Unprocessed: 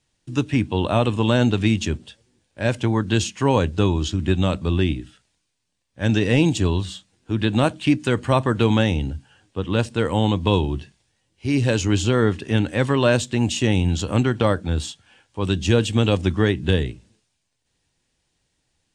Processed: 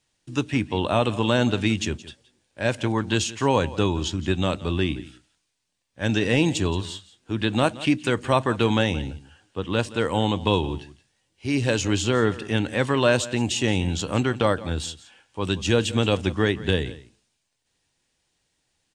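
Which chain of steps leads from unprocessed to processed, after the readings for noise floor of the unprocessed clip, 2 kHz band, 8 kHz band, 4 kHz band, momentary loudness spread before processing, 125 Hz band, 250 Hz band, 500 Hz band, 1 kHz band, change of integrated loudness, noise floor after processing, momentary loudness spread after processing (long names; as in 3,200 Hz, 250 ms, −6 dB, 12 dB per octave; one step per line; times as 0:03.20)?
−73 dBFS, 0.0 dB, 0.0 dB, 0.0 dB, 10 LU, −5.5 dB, −3.5 dB, −1.5 dB, −0.5 dB, −2.5 dB, −74 dBFS, 11 LU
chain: low-shelf EQ 280 Hz −6.5 dB
on a send: single-tap delay 172 ms −18 dB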